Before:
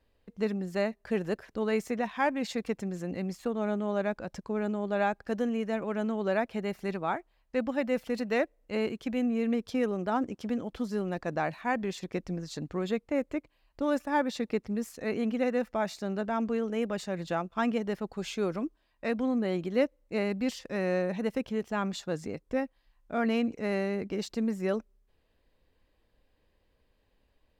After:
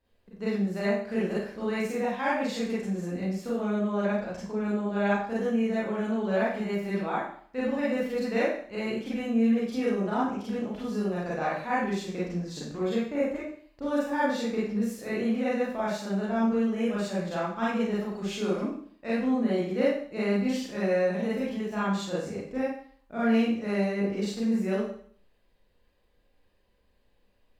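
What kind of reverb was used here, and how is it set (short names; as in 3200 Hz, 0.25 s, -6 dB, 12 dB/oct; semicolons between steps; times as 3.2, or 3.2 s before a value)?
Schroeder reverb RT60 0.54 s, combs from 31 ms, DRR -8.5 dB; gain -7 dB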